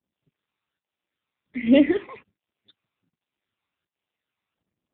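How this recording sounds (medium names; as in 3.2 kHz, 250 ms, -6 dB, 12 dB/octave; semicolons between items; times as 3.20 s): tremolo saw up 1.3 Hz, depth 65%; phasing stages 12, 1.3 Hz, lowest notch 520–1500 Hz; AMR-NB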